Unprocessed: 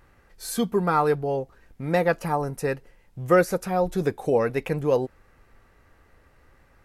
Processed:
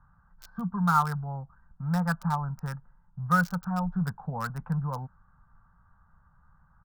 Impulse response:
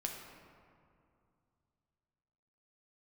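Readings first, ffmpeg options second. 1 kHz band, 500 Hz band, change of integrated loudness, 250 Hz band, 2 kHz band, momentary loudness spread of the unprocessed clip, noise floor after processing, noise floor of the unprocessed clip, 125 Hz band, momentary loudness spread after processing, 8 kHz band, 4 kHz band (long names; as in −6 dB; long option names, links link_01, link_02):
−2.5 dB, −22.0 dB, −5.0 dB, −2.5 dB, −2.0 dB, 14 LU, −63 dBFS, −59 dBFS, +1.5 dB, 16 LU, −10.0 dB, −7.5 dB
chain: -filter_complex "[0:a]deesser=0.7,firequalizer=gain_entry='entry(110,0);entry(170,7);entry(330,-29);entry(910,2);entry(1500,5);entry(2100,-21);entry(5300,6);entry(8500,-21);entry(14000,-24)':delay=0.05:min_phase=1,acrossover=split=180|1700[link_01][link_02][link_03];[link_03]acrusher=bits=5:mix=0:aa=0.000001[link_04];[link_01][link_02][link_04]amix=inputs=3:normalize=0,volume=-3dB"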